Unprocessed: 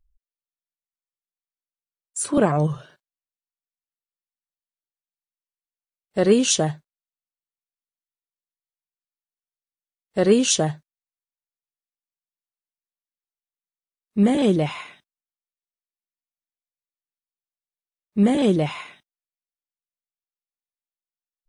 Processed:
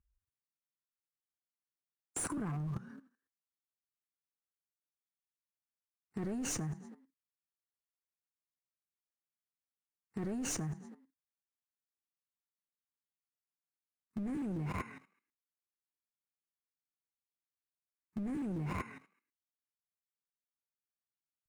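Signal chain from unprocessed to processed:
phaser with its sweep stopped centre 1,400 Hz, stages 4
in parallel at −5 dB: comparator with hysteresis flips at −32 dBFS
on the sum: high-pass filter 88 Hz 12 dB per octave
echo with shifted repeats 107 ms, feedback 37%, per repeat +38 Hz, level −20.5 dB
asymmetric clip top −21.5 dBFS
spectral tilt −1.5 dB per octave
downward compressor 6 to 1, threshold −31 dBFS, peak gain reduction 15.5 dB
dynamic equaliser 4,200 Hz, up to −5 dB, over −55 dBFS, Q 1.2
output level in coarse steps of 14 dB
level +5 dB

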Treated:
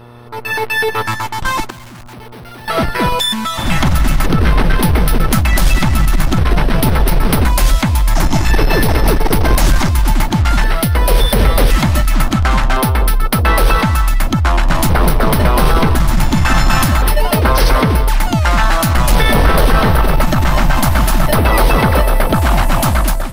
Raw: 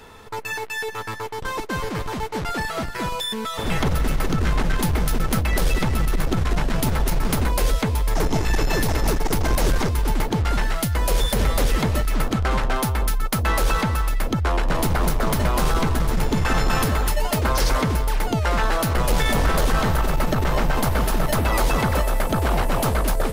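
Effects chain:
automatic gain control gain up to 15 dB
0:01.70–0:02.68: hard clipping −32.5 dBFS, distortion −18 dB
hum with harmonics 120 Hz, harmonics 12, −37 dBFS −5 dB per octave
auto-filter notch square 0.47 Hz 450–7,000 Hz
level −1 dB

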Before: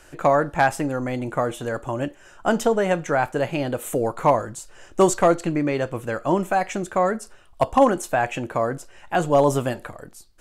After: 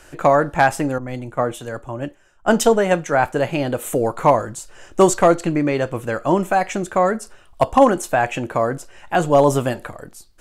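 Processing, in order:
0:00.98–0:03.25: multiband upward and downward expander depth 100%
level +3.5 dB

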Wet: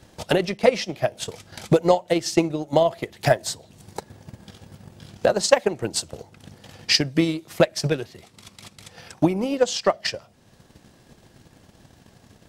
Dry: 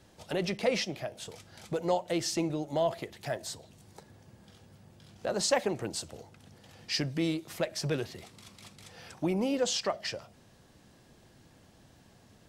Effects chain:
transient designer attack +11 dB, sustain −5 dB
speech leveller within 4 dB 0.5 s
level +5 dB

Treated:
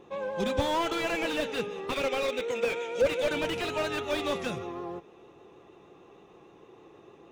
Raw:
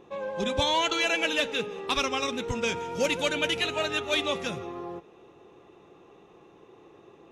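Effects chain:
pitch vibrato 6.5 Hz 29 cents
0:01.91–0:03.31: loudspeaker in its box 400–9,200 Hz, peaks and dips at 530 Hz +9 dB, 970 Hz −8 dB, 2,300 Hz +7 dB, 3,600 Hz +4 dB, 5,100 Hz −7 dB
slew-rate limiting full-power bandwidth 59 Hz

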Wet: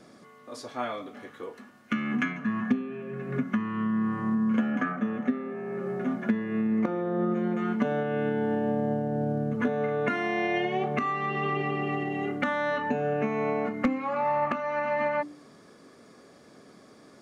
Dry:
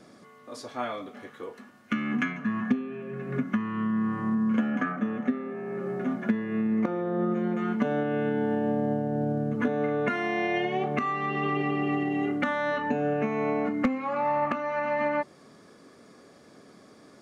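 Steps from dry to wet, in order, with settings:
hum removal 98.04 Hz, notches 3

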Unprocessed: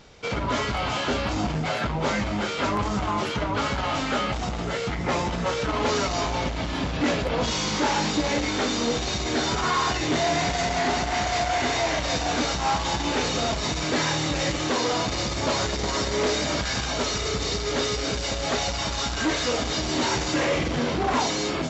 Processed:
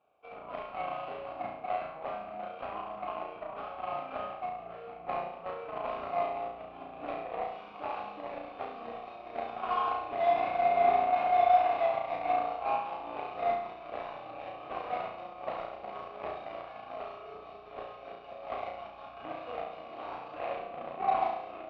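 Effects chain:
formant filter a
harmonic generator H 7 −20 dB, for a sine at −19 dBFS
high-frequency loss of the air 410 metres
flutter between parallel walls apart 5.9 metres, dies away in 0.66 s
level +2 dB

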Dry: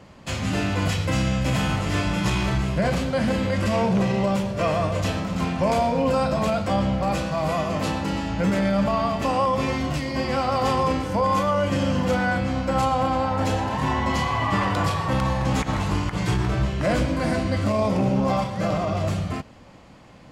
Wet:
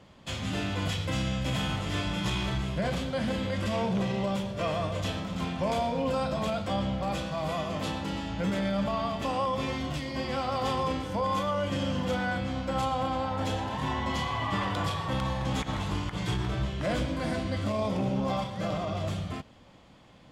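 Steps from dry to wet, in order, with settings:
parametric band 3,400 Hz +8.5 dB 0.28 octaves
level −7.5 dB

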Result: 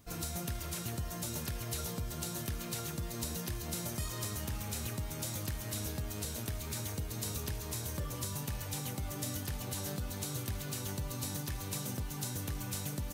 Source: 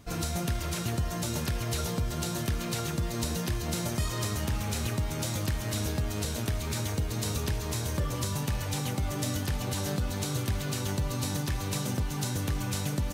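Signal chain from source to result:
high-shelf EQ 9,300 Hz +12 dB
surface crackle 72 per second −54 dBFS
level −8.5 dB

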